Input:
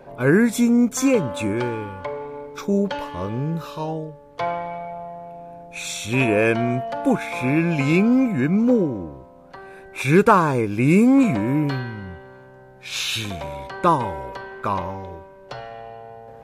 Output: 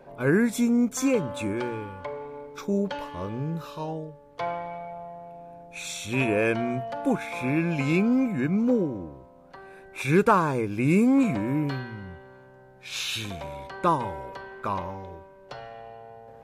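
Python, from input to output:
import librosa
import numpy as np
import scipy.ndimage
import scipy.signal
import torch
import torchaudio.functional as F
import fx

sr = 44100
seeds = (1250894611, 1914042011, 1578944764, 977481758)

y = fx.hum_notches(x, sr, base_hz=60, count=2)
y = F.gain(torch.from_numpy(y), -5.5).numpy()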